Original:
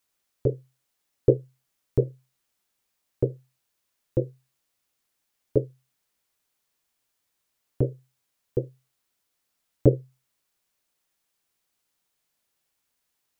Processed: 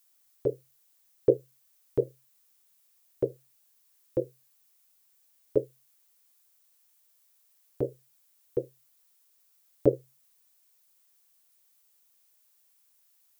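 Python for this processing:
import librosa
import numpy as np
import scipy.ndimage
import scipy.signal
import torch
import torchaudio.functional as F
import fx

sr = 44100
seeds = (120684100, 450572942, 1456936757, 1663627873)

y = fx.dmg_noise_colour(x, sr, seeds[0], colour='violet', level_db=-70.0)
y = fx.bass_treble(y, sr, bass_db=-14, treble_db=3)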